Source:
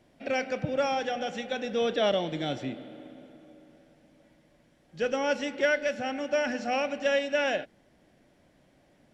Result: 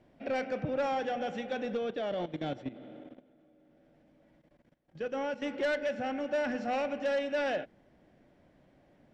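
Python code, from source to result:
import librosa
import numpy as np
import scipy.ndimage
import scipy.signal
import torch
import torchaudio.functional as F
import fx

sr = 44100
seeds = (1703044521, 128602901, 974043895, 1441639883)

y = fx.lowpass(x, sr, hz=1800.0, slope=6)
y = fx.level_steps(y, sr, step_db=16, at=(1.77, 5.42))
y = 10.0 ** (-25.5 / 20.0) * np.tanh(y / 10.0 ** (-25.5 / 20.0))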